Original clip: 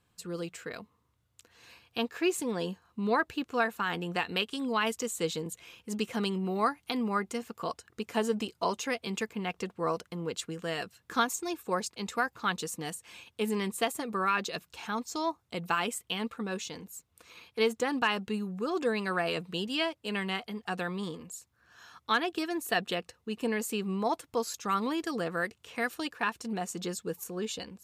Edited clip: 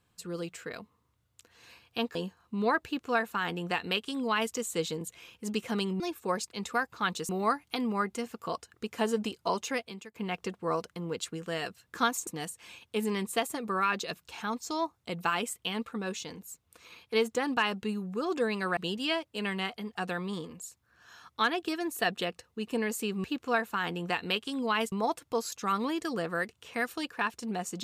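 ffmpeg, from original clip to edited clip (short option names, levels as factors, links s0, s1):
-filter_complex "[0:a]asplit=9[s0][s1][s2][s3][s4][s5][s6][s7][s8];[s0]atrim=end=2.152[s9];[s1]atrim=start=2.598:end=6.452[s10];[s2]atrim=start=11.428:end=12.722[s11];[s3]atrim=start=6.448:end=9.31,asetpts=PTS-STARTPTS,afade=t=out:st=2.472:d=0.39:c=qua:silence=0.149624[s12];[s4]atrim=start=9.31:end=11.432,asetpts=PTS-STARTPTS,afade=t=in:d=0.004:c=hsin:silence=0.149624[s13];[s5]atrim=start=12.718:end=19.222[s14];[s6]atrim=start=19.468:end=23.942[s15];[s7]atrim=start=3.298:end=4.982[s16];[s8]atrim=start=23.938[s17];[s9][s10]acrossfade=d=0.004:c1=hsin:c2=hsin[s18];[s18][s11]acrossfade=d=0.004:c1=hsin:c2=hsin[s19];[s12][s13]concat=n=2:v=0:a=1[s20];[s19][s20]acrossfade=d=0.004:c1=hsin:c2=hsin[s21];[s21][s14]acrossfade=d=0.004:c1=hsin:c2=hsin[s22];[s22][s15]acrossfade=d=0.004:c1=hsin:c2=hsin[s23];[s23][s16]acrossfade=d=0.004:c1=hsin:c2=hsin[s24];[s24][s17]acrossfade=d=0.004:c1=hsin:c2=hsin"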